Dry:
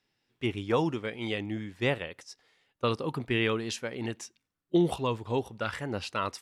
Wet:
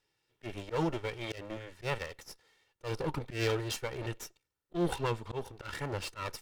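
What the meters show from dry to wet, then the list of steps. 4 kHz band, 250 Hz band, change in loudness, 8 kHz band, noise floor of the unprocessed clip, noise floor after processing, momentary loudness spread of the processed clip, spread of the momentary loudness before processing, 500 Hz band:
−5.0 dB, −7.5 dB, −5.5 dB, −1.0 dB, −83 dBFS, −83 dBFS, 13 LU, 10 LU, −5.0 dB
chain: lower of the sound and its delayed copy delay 2.2 ms
volume swells 131 ms

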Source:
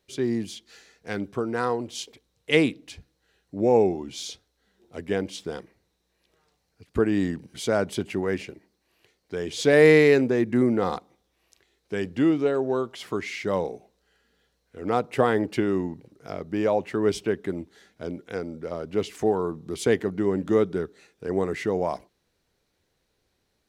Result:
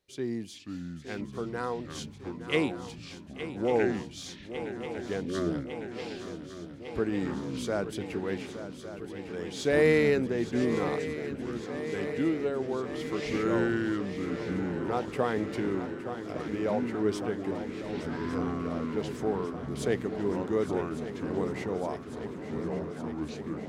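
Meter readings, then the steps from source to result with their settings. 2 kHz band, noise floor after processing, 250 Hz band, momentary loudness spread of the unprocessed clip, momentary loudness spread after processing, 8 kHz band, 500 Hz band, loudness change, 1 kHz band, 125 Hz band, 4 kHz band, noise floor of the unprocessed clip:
−5.5 dB, −44 dBFS, −4.0 dB, 16 LU, 12 LU, −6.0 dB, −6.0 dB, −7.0 dB, −5.0 dB, −3.0 dB, −5.5 dB, −74 dBFS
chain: delay with pitch and tempo change per echo 425 ms, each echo −5 semitones, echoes 3, each echo −6 dB
feedback echo with a long and a short gap by turns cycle 1,154 ms, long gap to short 3 to 1, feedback 75%, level −12 dB
level −7.5 dB

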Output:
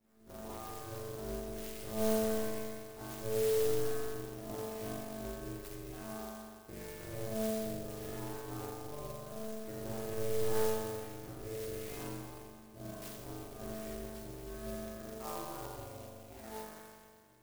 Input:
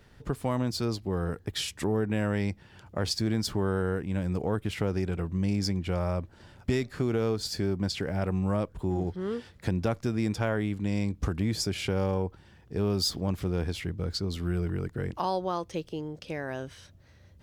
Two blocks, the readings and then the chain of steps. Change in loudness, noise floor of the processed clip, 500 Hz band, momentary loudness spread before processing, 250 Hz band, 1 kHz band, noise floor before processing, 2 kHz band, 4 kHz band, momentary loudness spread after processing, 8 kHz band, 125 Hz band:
−9.0 dB, −56 dBFS, −5.0 dB, 7 LU, −13.0 dB, −8.5 dB, −56 dBFS, −11.0 dB, −14.5 dB, 15 LU, −5.0 dB, −16.5 dB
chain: resonators tuned to a chord A2 fifth, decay 0.79 s
spring reverb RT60 2.1 s, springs 41 ms, chirp 40 ms, DRR −8 dB
ring modulation 220 Hz
converter with an unsteady clock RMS 0.086 ms
level +2 dB

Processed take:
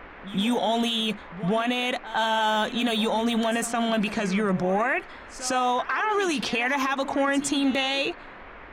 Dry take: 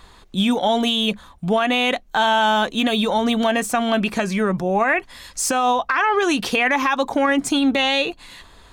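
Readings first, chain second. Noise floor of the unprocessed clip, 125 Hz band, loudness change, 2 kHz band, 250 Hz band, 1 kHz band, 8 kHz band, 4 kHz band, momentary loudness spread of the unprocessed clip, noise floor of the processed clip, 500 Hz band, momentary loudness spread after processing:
−48 dBFS, −3.0 dB, −5.5 dB, −6.0 dB, −5.0 dB, −6.0 dB, −5.5 dB, −5.5 dB, 5 LU, −44 dBFS, −5.5 dB, 6 LU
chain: low-pass that shuts in the quiet parts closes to 550 Hz, open at −15.5 dBFS
high-shelf EQ 6,900 Hz +6 dB
brickwall limiter −14.5 dBFS, peak gain reduction 7.5 dB
noise in a band 210–2,100 Hz −43 dBFS
echo ahead of the sound 109 ms −14 dB
level −2 dB

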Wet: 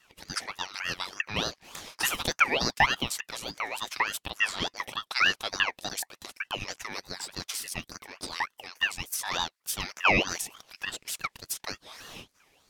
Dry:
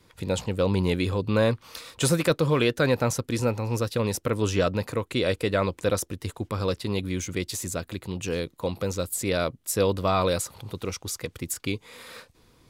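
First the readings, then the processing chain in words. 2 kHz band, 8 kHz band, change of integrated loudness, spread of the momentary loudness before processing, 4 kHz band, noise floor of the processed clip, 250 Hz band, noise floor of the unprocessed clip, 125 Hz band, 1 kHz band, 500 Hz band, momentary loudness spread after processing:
+5.5 dB, −2.5 dB, −3.0 dB, 11 LU, +3.5 dB, −75 dBFS, −13.5 dB, −61 dBFS, −16.5 dB, +0.5 dB, −14.5 dB, 14 LU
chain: auto-filter high-pass saw up 2.5 Hz 410–3,700 Hz
ring modulator whose carrier an LFO sweeps 1,800 Hz, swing 30%, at 3.4 Hz

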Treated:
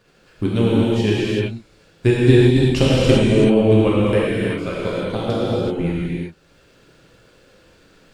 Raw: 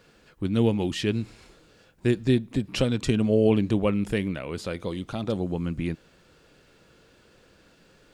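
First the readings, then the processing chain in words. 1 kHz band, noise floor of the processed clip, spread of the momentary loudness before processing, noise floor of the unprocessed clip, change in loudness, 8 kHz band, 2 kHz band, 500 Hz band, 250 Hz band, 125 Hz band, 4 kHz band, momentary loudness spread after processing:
+9.0 dB, −54 dBFS, 11 LU, −59 dBFS, +8.5 dB, +6.0 dB, +9.5 dB, +9.5 dB, +8.0 dB, +10.0 dB, +9.0 dB, 11 LU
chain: transient designer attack +10 dB, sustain −9 dB
reverb whose tail is shaped and stops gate 410 ms flat, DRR −8 dB
level −3.5 dB

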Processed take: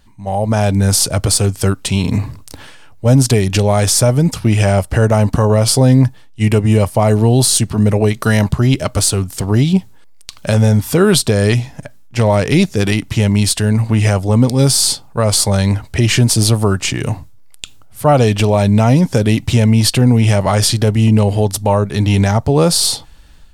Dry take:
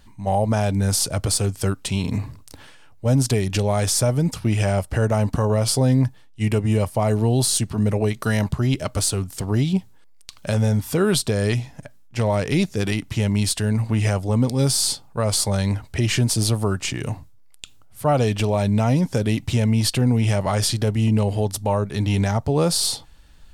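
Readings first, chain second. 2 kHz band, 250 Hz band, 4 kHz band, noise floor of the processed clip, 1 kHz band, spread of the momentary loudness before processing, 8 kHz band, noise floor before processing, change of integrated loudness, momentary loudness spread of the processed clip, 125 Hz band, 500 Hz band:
+8.0 dB, +8.0 dB, +8.0 dB, −38 dBFS, +7.5 dB, 6 LU, +7.5 dB, −47 dBFS, +8.0 dB, 7 LU, +8.0 dB, +8.0 dB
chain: automatic gain control gain up to 11.5 dB

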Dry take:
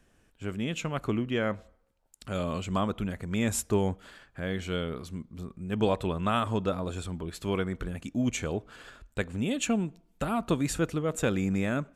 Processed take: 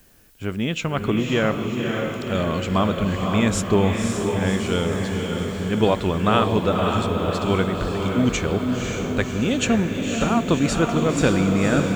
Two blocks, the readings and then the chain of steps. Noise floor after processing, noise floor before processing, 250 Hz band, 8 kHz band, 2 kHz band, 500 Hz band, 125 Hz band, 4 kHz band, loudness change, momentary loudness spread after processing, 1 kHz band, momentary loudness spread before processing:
−30 dBFS, −66 dBFS, +9.5 dB, +6.5 dB, +10.0 dB, +9.5 dB, +9.5 dB, +10.5 dB, +9.5 dB, 6 LU, +10.0 dB, 11 LU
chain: Chebyshev low-pass filter 5,600 Hz, order 2
feedback delay with all-pass diffusion 544 ms, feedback 63%, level −3.5 dB
background noise blue −66 dBFS
level +8.5 dB

